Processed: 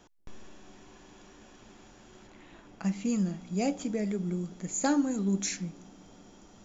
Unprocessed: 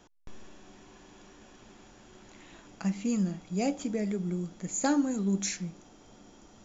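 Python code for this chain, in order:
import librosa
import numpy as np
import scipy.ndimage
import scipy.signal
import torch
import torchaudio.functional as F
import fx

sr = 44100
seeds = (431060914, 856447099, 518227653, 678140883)

y = fx.high_shelf(x, sr, hz=4900.0, db=-12.0, at=(2.27, 2.84))
y = fx.echo_wet_lowpass(y, sr, ms=184, feedback_pct=65, hz=420.0, wet_db=-22.0)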